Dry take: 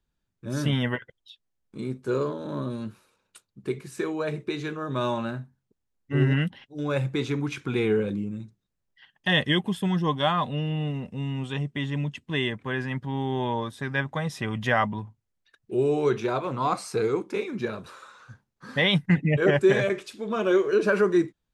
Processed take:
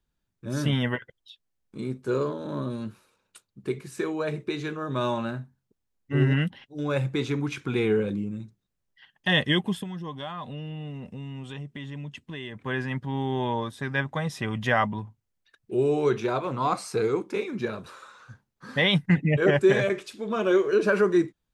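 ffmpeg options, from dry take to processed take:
ffmpeg -i in.wav -filter_complex "[0:a]asplit=3[link_01][link_02][link_03];[link_01]afade=type=out:start_time=9.82:duration=0.02[link_04];[link_02]acompressor=threshold=-36dB:ratio=3:attack=3.2:release=140:knee=1:detection=peak,afade=type=in:start_time=9.82:duration=0.02,afade=type=out:start_time=12.55:duration=0.02[link_05];[link_03]afade=type=in:start_time=12.55:duration=0.02[link_06];[link_04][link_05][link_06]amix=inputs=3:normalize=0" out.wav

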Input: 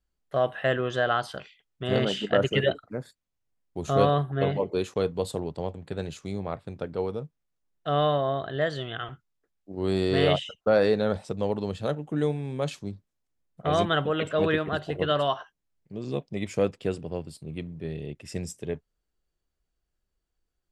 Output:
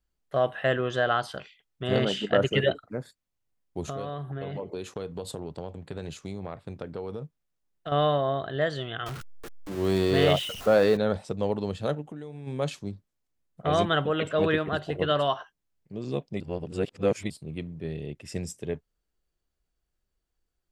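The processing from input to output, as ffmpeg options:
ffmpeg -i in.wav -filter_complex "[0:a]asettb=1/sr,asplit=3[link_01][link_02][link_03];[link_01]atrim=end=3.854[link_04];[link_02]atrim=start=3.85:end=7.92,asetpts=PTS-STARTPTS,afade=type=in:duration=0.004:curve=qsin,afade=type=out:start_time=4.066:duration=0.004:curve=qsin,acompressor=threshold=-30dB:ratio=8:attack=3.2:release=140:knee=1:detection=peak[link_05];[link_03]atrim=start=7.916[link_06];[link_04][link_05]acrossfade=duration=0.004:curve1=hsin:curve2=qsin[link_07];[link_07][link_06]acrossfade=duration=0.004:curve1=qsin:curve2=hsin,asettb=1/sr,asplit=3[link_08][link_09][link_10];[link_08]atrim=end=9.064[link_11];[link_09]atrim=start=9.06:end=10.97,asetpts=PTS-STARTPTS,afade=type=in:duration=0.004:curve=qsin,afade=type=out:start_time=1.906:duration=0.004:curve=qsin,aeval=exprs='val(0)+0.5*0.0211*sgn(val(0))':channel_layout=same[link_12];[link_10]atrim=start=10.966[link_13];[link_11][link_12]acrossfade=duration=0.004:curve1=hsin:curve2=qsin[link_14];[link_14][link_13]acrossfade=duration=0.004:curve1=qsin:curve2=hsin,asplit=3[link_15][link_16][link_17];[link_15]afade=type=out:start_time=12.01:duration=0.02[link_18];[link_16]acompressor=threshold=-36dB:ratio=8:attack=3.2:release=140:knee=1:detection=peak,afade=type=in:start_time=12.01:duration=0.02,afade=type=out:start_time=12.46:duration=0.02[link_19];[link_17]afade=type=in:start_time=12.46:duration=0.02[link_20];[link_18][link_19][link_20]amix=inputs=3:normalize=0,asplit=3[link_21][link_22][link_23];[link_21]atrim=end=16.402[link_24];[link_22]atrim=start=16.398:end=17.302,asetpts=PTS-STARTPTS,areverse[link_25];[link_23]atrim=start=17.298[link_26];[link_24][link_25]acrossfade=duration=0.004:curve1=hsin:curve2=hsin[link_27];[link_27][link_26]acrossfade=duration=0.004:curve1=hsin:curve2=hsin" out.wav

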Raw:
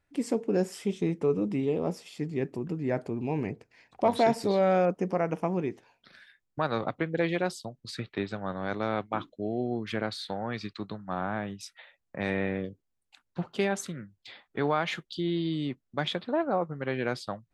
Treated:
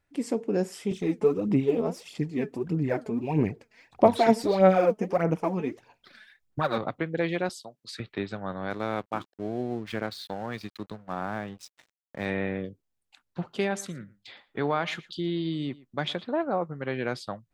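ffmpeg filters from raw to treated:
ffmpeg -i in.wav -filter_complex "[0:a]asettb=1/sr,asplit=3[link_01][link_02][link_03];[link_01]atrim=end=0.914[link_04];[link_02]atrim=start=0.91:end=6.78,asetpts=PTS-STARTPTS,afade=type=in:duration=0.004:curve=qsin,afade=type=out:start_time=5.866:duration=0.004:curve=qsin,aphaser=in_gain=1:out_gain=1:delay=4.7:decay=0.63:speed=1.6:type=sinusoidal[link_05];[link_03]atrim=start=6.776[link_06];[link_04][link_05]acrossfade=duration=0.004:curve1=hsin:curve2=qsin[link_07];[link_07][link_06]acrossfade=duration=0.004:curve1=qsin:curve2=hsin,asettb=1/sr,asplit=3[link_08][link_09][link_10];[link_08]atrim=end=7.494[link_11];[link_09]atrim=start=7.49:end=8,asetpts=PTS-STARTPTS,afade=type=in:duration=0.004:curve=qsin,afade=type=out:start_time=0.506:duration=0.004:curve=qsin,highpass=frequency=610:poles=1[link_12];[link_10]atrim=start=7.996[link_13];[link_11][link_12]acrossfade=duration=0.004:curve1=hsin:curve2=qsin[link_14];[link_14][link_13]acrossfade=duration=0.004:curve1=qsin:curve2=hsin,asettb=1/sr,asplit=3[link_15][link_16][link_17];[link_15]atrim=end=8.704[link_18];[link_16]atrim=start=8.7:end=12.26,asetpts=PTS-STARTPTS,afade=type=in:duration=0.004:curve=qsin,afade=type=out:start_time=3.556:duration=0.004:curve=qsin,aeval=exprs='sgn(val(0))*max(abs(val(0))-0.00376,0)':channel_layout=same[link_19];[link_17]atrim=start=12.256[link_20];[link_18][link_19]acrossfade=duration=0.004:curve1=hsin:curve2=qsin[link_21];[link_21][link_20]acrossfade=duration=0.004:curve1=qsin:curve2=hsin,asettb=1/sr,asplit=3[link_22][link_23][link_24];[link_22]atrim=end=13.584[link_25];[link_23]atrim=start=13.58:end=16.24,asetpts=PTS-STARTPTS,afade=type=in:duration=0.004:curve=qsin,afade=type=out:start_time=2.656:duration=0.004:curve=qsin,aecho=1:1:115:0.0891,atrim=end_sample=117306[link_26];[link_24]atrim=start=16.236[link_27];[link_25][link_26]acrossfade=duration=0.004:curve1=hsin:curve2=qsin[link_28];[link_28][link_27]acrossfade=duration=0.004:curve1=qsin:curve2=hsin" out.wav

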